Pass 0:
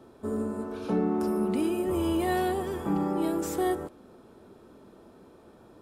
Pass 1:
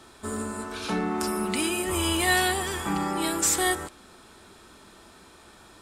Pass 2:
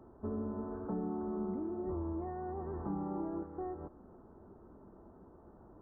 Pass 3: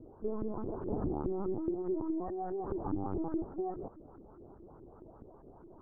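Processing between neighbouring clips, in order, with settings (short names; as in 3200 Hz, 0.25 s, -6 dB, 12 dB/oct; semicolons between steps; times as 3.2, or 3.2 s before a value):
graphic EQ 125/250/500/2000/4000/8000 Hz -7/-7/-10/+6/+6/+11 dB; gain +7 dB
compressor 6:1, threshold -31 dBFS, peak gain reduction 12 dB; Gaussian blur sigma 10 samples; gain -1 dB
LFO low-pass saw up 4.8 Hz 290–1600 Hz; LPC vocoder at 8 kHz pitch kept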